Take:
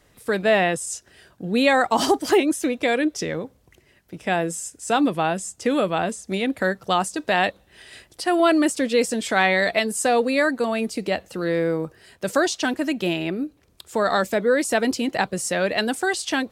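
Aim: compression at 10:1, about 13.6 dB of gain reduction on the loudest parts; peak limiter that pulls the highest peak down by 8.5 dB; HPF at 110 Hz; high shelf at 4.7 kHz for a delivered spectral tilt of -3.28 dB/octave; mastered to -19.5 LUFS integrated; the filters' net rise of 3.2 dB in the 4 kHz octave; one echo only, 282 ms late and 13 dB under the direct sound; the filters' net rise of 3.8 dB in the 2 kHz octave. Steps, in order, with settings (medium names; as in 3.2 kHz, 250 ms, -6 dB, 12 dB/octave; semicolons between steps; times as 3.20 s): high-pass 110 Hz; peaking EQ 2 kHz +4.5 dB; peaking EQ 4 kHz +5 dB; treble shelf 4.7 kHz -5.5 dB; compression 10:1, threshold -26 dBFS; peak limiter -20 dBFS; delay 282 ms -13 dB; trim +12.5 dB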